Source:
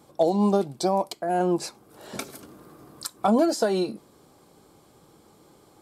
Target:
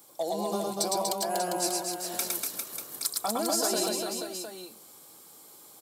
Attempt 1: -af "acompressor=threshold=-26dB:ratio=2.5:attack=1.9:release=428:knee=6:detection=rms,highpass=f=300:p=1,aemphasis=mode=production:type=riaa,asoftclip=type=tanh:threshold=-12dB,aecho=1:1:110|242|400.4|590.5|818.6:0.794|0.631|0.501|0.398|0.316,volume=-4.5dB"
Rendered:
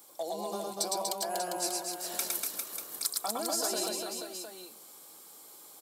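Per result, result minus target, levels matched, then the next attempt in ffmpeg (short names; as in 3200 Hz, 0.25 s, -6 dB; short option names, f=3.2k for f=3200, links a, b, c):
compressor: peak gain reduction +4.5 dB; 250 Hz band -4.0 dB
-af "acompressor=threshold=-18.5dB:ratio=2.5:attack=1.9:release=428:knee=6:detection=rms,highpass=f=300:p=1,aemphasis=mode=production:type=riaa,asoftclip=type=tanh:threshold=-12dB,aecho=1:1:110|242|400.4|590.5|818.6:0.794|0.631|0.501|0.398|0.316,volume=-4.5dB"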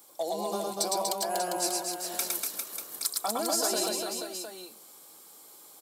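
250 Hz band -3.0 dB
-af "acompressor=threshold=-18.5dB:ratio=2.5:attack=1.9:release=428:knee=6:detection=rms,aemphasis=mode=production:type=riaa,asoftclip=type=tanh:threshold=-12dB,aecho=1:1:110|242|400.4|590.5|818.6:0.794|0.631|0.501|0.398|0.316,volume=-4.5dB"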